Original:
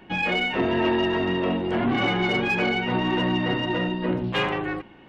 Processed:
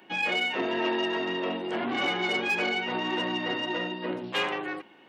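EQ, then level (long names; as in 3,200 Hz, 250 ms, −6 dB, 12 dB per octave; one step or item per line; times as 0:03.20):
high-pass filter 290 Hz 12 dB per octave
high-shelf EQ 4,700 Hz +11 dB
−4.5 dB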